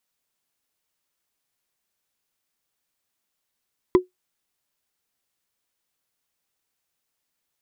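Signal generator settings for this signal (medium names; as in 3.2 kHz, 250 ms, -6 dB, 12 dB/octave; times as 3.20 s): wood hit, lowest mode 365 Hz, decay 0.14 s, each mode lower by 8 dB, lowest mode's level -7 dB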